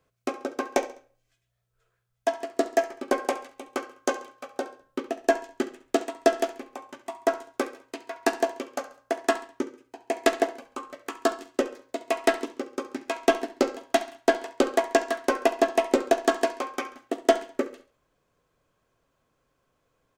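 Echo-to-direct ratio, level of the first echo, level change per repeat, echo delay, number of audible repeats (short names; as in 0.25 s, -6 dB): -16.0 dB, -16.5 dB, -8.0 dB, 68 ms, 3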